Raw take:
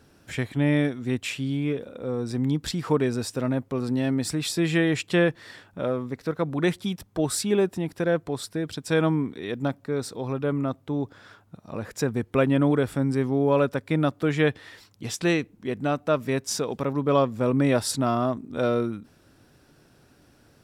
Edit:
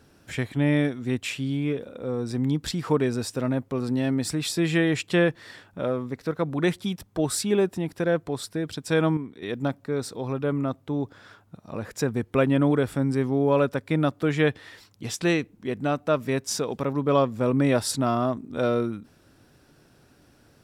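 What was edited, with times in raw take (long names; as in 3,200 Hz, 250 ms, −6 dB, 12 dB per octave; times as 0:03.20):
0:09.17–0:09.42: clip gain −7.5 dB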